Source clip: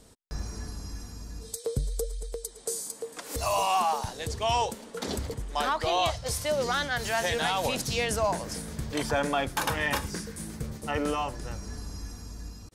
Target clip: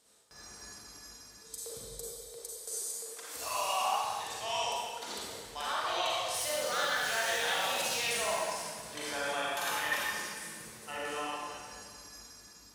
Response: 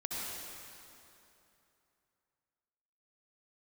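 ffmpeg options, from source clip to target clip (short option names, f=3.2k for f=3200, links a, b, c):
-filter_complex "[0:a]asettb=1/sr,asplit=3[a][b][c];[a]atrim=end=6.344[d];[b]atrim=start=6.34:end=8.37,asetpts=PTS-STARTPTS,afade=t=in:d=0.004:c=qsin,afade=t=out:st=2.026:d=0.004:c=qsin,aeval=exprs='val(0)+0.5*0.0188*sgn(val(0))':c=same[e];[c]atrim=start=8.366[f];[d][e]acrossfade=d=0.004:c1=hsin:c2=qsin[g];[g][f]acrossfade=d=0.004:c1=qsin:c2=hsin,highpass=f=1.2k:p=1[h];[1:a]atrim=start_sample=2205,asetrate=74970,aresample=44100[i];[h][i]afir=irnorm=-1:irlink=0"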